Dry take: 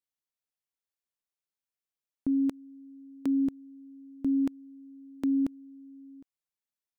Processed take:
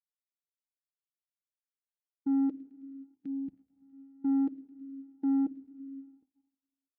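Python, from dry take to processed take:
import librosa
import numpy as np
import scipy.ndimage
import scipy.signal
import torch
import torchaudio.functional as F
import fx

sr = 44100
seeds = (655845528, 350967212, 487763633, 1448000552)

p1 = fx.level_steps(x, sr, step_db=14)
p2 = x + (p1 * librosa.db_to_amplitude(0.0))
p3 = fx.air_absorb(p2, sr, metres=140.0)
p4 = fx.notch(p3, sr, hz=580.0, q=12.0)
p5 = p4 + fx.echo_wet_highpass(p4, sr, ms=107, feedback_pct=78, hz=1500.0, wet_db=-13.5, dry=0)
p6 = fx.spec_box(p5, sr, start_s=2.84, length_s=1.09, low_hz=220.0, high_hz=1200.0, gain_db=-11)
p7 = fx.graphic_eq(p6, sr, hz=(125, 250, 500, 1000), db=(-5, -5, 5, -11))
p8 = fx.room_shoebox(p7, sr, seeds[0], volume_m3=3200.0, walls='mixed', distance_m=0.56)
p9 = fx.leveller(p8, sr, passes=2)
p10 = scipy.signal.sosfilt(scipy.signal.butter(2, 58.0, 'highpass', fs=sr, output='sos'), p9)
p11 = fx.spectral_expand(p10, sr, expansion=1.5)
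y = p11 * librosa.db_to_amplitude(-3.5)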